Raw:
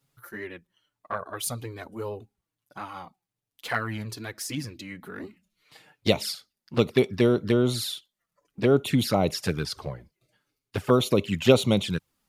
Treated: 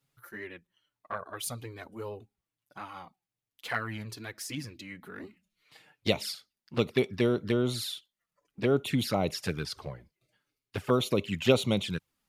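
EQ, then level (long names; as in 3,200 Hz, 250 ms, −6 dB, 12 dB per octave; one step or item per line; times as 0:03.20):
parametric band 2,400 Hz +3 dB 1.4 octaves
−5.5 dB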